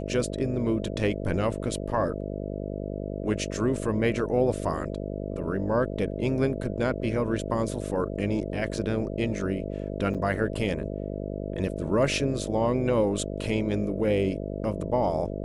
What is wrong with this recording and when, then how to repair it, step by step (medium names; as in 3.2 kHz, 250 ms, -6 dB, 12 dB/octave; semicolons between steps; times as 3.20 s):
buzz 50 Hz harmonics 13 -33 dBFS
10.14–10.15 s: dropout 7 ms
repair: de-hum 50 Hz, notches 13; interpolate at 10.14 s, 7 ms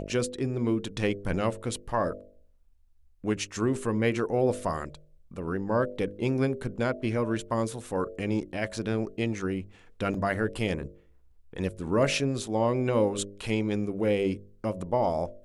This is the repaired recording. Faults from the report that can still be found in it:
nothing left